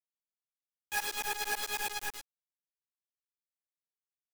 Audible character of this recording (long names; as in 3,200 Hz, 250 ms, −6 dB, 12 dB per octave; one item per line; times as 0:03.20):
tremolo saw up 9.1 Hz, depth 95%
a quantiser's noise floor 6 bits, dither none
a shimmering, thickened sound